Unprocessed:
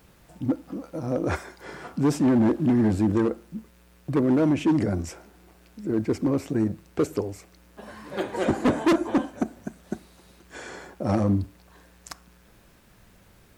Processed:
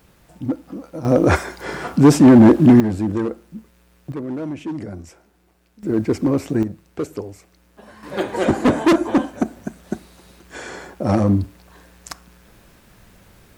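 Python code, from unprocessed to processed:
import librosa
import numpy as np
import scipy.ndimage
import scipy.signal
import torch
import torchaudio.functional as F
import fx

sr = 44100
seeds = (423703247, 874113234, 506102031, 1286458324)

y = fx.gain(x, sr, db=fx.steps((0.0, 2.0), (1.05, 11.5), (2.8, 0.5), (4.12, -6.5), (5.83, 5.5), (6.63, -1.5), (8.03, 6.0)))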